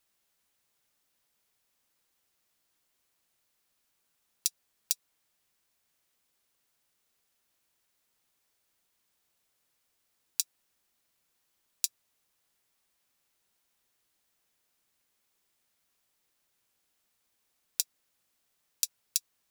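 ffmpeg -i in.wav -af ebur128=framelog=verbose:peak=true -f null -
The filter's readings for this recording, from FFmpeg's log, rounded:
Integrated loudness:
  I:         -34.2 LUFS
  Threshold: -44.1 LUFS
Loudness range:
  LRA:         3.0 LU
  Threshold: -60.9 LUFS
  LRA low:   -42.8 LUFS
  LRA high:  -39.7 LUFS
True peak:
  Peak:       -1.3 dBFS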